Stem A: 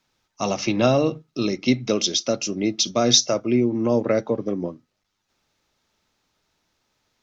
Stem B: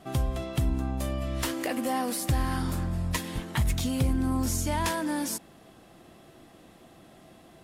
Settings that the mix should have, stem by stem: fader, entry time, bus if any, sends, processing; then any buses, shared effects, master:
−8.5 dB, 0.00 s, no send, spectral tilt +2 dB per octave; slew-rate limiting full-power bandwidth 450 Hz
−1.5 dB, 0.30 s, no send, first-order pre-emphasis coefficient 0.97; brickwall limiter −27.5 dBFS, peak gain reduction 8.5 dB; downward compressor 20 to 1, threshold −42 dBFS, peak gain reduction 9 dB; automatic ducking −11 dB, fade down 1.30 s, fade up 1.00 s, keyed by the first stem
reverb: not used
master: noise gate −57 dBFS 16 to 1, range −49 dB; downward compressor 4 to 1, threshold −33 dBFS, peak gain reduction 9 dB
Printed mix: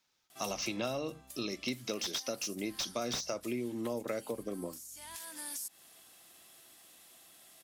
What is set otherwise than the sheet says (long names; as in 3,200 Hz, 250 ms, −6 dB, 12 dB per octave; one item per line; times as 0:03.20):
stem B −1.5 dB → +7.0 dB
master: missing noise gate −57 dBFS 16 to 1, range −49 dB